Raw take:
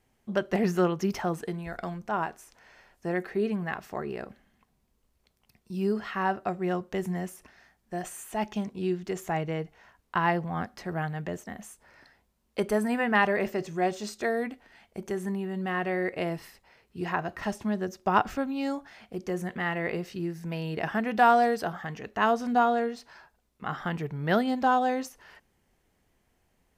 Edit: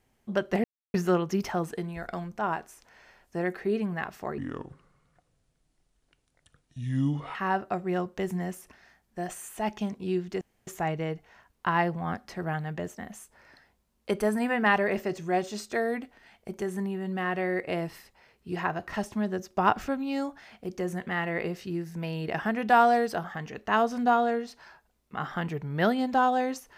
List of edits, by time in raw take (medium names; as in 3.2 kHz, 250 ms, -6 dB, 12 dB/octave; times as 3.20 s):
0.64 s: insert silence 0.30 s
4.08–6.10 s: speed 68%
9.16 s: insert room tone 0.26 s